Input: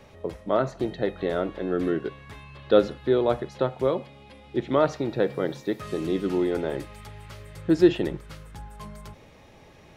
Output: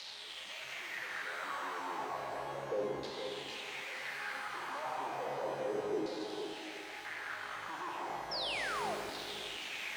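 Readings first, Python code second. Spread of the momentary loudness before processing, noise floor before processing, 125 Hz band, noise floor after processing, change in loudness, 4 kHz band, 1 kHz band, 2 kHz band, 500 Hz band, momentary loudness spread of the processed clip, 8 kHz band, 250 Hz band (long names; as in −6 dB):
22 LU, −52 dBFS, −22.0 dB, −47 dBFS, −13.5 dB, 0.0 dB, −4.5 dB, 0.0 dB, −16.0 dB, 6 LU, can't be measured, −21.0 dB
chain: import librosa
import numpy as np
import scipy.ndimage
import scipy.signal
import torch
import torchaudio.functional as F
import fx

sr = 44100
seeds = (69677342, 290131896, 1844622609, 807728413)

y = np.sign(x) * np.sqrt(np.mean(np.square(x)))
y = fx.spec_erase(y, sr, start_s=5.92, length_s=1.13, low_hz=910.0, high_hz=3700.0)
y = fx.peak_eq(y, sr, hz=820.0, db=10.0, octaves=0.77)
y = 10.0 ** (-34.5 / 20.0) * np.tanh(y / 10.0 ** (-34.5 / 20.0))
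y = fx.filter_lfo_bandpass(y, sr, shape='saw_down', hz=0.33, low_hz=360.0, high_hz=4400.0, q=4.0)
y = fx.high_shelf(y, sr, hz=4700.0, db=-7.0)
y = y + 10.0 ** (-8.0 / 20.0) * np.pad(y, (int(470 * sr / 1000.0), 0))[:len(y)]
y = fx.spec_paint(y, sr, seeds[0], shape='fall', start_s=8.31, length_s=0.64, low_hz=600.0, high_hz=5600.0, level_db=-44.0)
y = fx.rev_shimmer(y, sr, seeds[1], rt60_s=2.5, semitones=12, shimmer_db=-8, drr_db=3.5)
y = F.gain(torch.from_numpy(y), 4.5).numpy()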